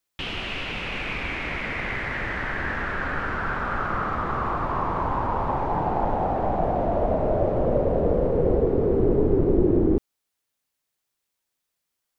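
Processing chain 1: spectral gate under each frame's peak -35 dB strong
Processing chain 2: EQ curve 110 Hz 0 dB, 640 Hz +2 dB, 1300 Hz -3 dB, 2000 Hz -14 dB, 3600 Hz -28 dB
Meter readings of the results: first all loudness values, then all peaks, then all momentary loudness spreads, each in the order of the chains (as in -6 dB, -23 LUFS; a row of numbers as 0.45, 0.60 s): -25.0, -24.0 LUFS; -7.0, -6.5 dBFS; 7, 14 LU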